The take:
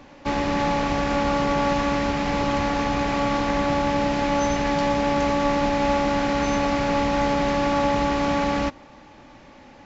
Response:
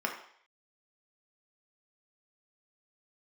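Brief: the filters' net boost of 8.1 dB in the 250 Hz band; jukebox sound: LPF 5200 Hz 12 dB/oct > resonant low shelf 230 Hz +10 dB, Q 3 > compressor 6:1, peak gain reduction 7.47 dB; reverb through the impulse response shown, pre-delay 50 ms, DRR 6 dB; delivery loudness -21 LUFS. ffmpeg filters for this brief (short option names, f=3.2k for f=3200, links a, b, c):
-filter_complex "[0:a]equalizer=f=250:t=o:g=5.5,asplit=2[a][b];[1:a]atrim=start_sample=2205,adelay=50[c];[b][c]afir=irnorm=-1:irlink=0,volume=-13dB[d];[a][d]amix=inputs=2:normalize=0,lowpass=5.2k,lowshelf=f=230:t=q:w=3:g=10,acompressor=threshold=-16dB:ratio=6"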